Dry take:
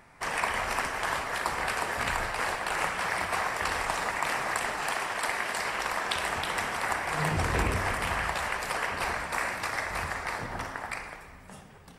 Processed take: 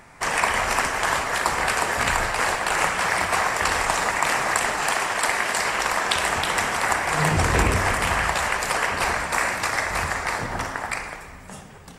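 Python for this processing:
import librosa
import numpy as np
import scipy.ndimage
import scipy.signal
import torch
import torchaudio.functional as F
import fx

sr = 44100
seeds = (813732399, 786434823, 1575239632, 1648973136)

y = fx.peak_eq(x, sr, hz=7100.0, db=5.5, octaves=0.54)
y = F.gain(torch.from_numpy(y), 7.5).numpy()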